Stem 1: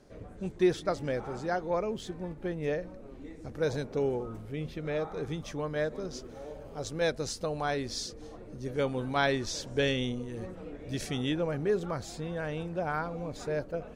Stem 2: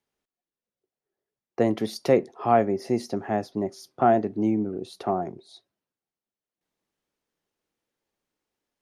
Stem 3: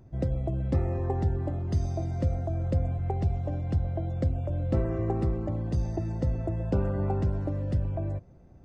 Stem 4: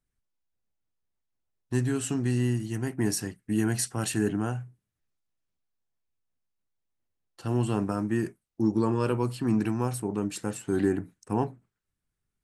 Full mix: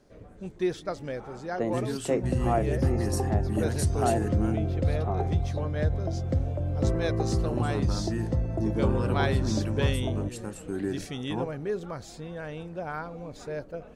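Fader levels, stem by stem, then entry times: -2.5, -7.5, +0.5, -6.0 dB; 0.00, 0.00, 2.10, 0.00 s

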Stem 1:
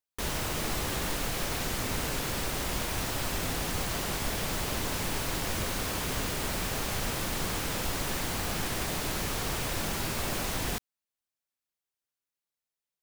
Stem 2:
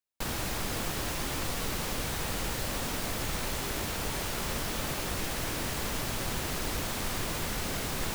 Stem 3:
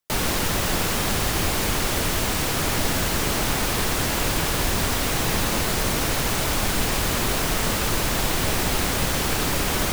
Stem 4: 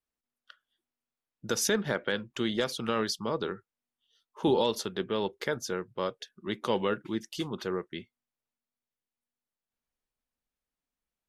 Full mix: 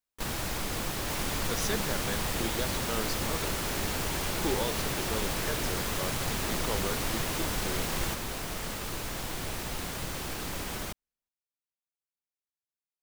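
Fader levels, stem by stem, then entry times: -12.0, -0.5, -13.5, -6.5 dB; 0.00, 0.00, 1.00, 0.00 s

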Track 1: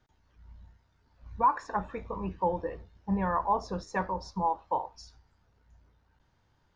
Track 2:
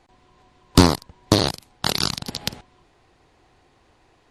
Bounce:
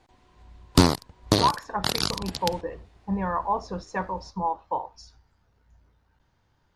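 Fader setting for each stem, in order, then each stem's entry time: +1.5, -4.0 dB; 0.00, 0.00 s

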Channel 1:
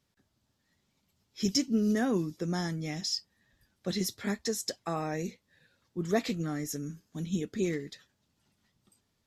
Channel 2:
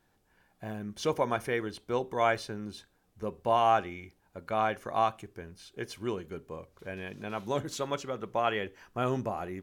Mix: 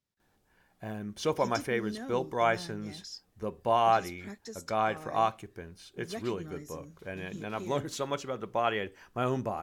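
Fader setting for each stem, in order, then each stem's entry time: -12.0, 0.0 dB; 0.00, 0.20 s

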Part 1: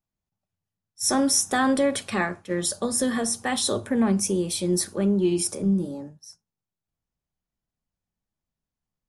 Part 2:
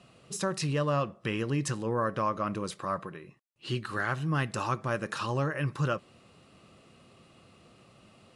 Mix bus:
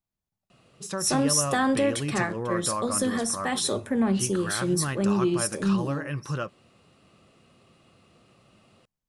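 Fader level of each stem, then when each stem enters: -2.0, -1.5 dB; 0.00, 0.50 s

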